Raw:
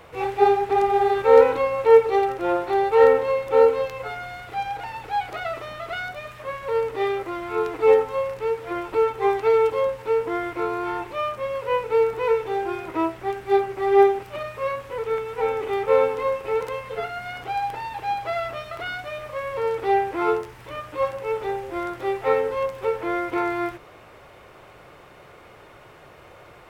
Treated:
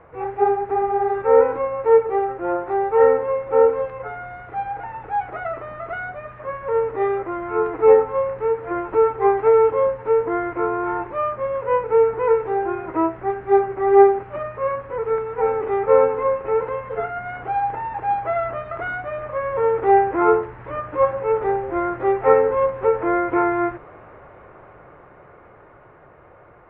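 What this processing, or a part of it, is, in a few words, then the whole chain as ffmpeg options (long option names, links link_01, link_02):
action camera in a waterproof case: -af "lowpass=frequency=1800:width=0.5412,lowpass=frequency=1800:width=1.3066,dynaudnorm=framelen=710:gausssize=9:maxgain=11.5dB,volume=-1dB" -ar 32000 -c:a aac -b:a 48k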